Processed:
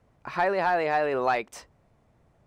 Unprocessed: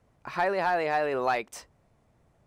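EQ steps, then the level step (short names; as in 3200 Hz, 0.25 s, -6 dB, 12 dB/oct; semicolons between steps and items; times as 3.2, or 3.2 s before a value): high shelf 6000 Hz -6.5 dB; +2.0 dB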